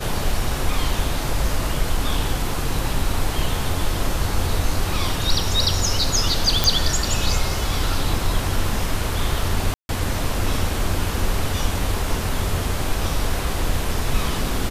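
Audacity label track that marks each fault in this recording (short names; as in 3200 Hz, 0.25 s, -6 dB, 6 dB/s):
6.640000	6.640000	pop
9.740000	9.890000	gap 0.151 s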